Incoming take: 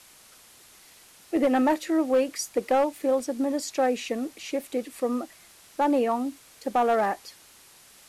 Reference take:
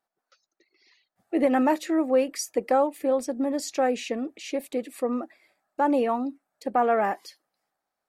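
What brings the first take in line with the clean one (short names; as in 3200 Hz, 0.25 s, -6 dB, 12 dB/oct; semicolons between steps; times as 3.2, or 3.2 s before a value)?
clip repair -16 dBFS; de-click; noise print and reduce 29 dB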